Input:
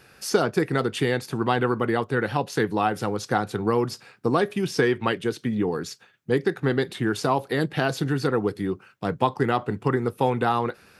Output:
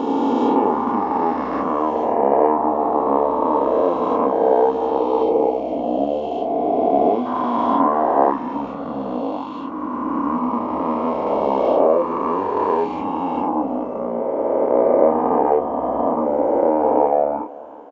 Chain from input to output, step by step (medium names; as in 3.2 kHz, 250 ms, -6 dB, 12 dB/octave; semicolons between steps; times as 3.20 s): reverse spectral sustain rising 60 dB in 2.81 s; wide varispeed 0.614×; tone controls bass -14 dB, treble -8 dB; doubling 29 ms -5 dB; time-frequency box 5.23–7.26 s, 850–2000 Hz -12 dB; graphic EQ 125/250/500/1000/2000/4000/8000 Hz -8/+8/+9/+10/-8/-6/-12 dB; modulated delay 378 ms, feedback 55%, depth 55 cents, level -20.5 dB; trim -6.5 dB